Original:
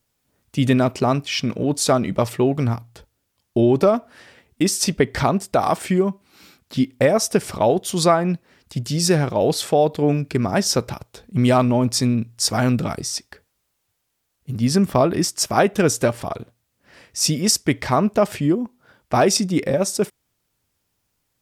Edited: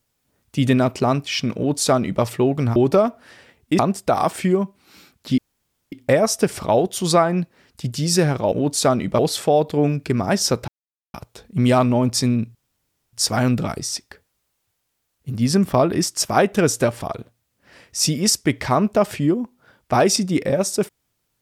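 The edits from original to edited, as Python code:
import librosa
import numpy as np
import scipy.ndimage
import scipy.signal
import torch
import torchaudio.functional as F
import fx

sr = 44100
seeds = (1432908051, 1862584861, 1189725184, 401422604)

y = fx.edit(x, sr, fx.duplicate(start_s=1.56, length_s=0.67, to_s=9.44),
    fx.cut(start_s=2.76, length_s=0.89),
    fx.cut(start_s=4.68, length_s=0.57),
    fx.insert_room_tone(at_s=6.84, length_s=0.54),
    fx.insert_silence(at_s=10.93, length_s=0.46),
    fx.insert_room_tone(at_s=12.34, length_s=0.58), tone=tone)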